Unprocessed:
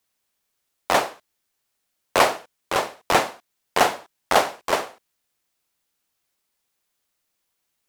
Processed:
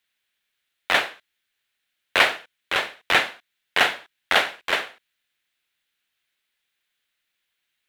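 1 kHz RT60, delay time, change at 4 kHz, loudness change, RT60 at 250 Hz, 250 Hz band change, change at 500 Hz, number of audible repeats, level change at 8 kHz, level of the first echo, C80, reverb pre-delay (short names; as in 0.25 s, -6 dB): none, none, +4.5 dB, +0.5 dB, none, -6.5 dB, -6.5 dB, none, -6.5 dB, none, none, none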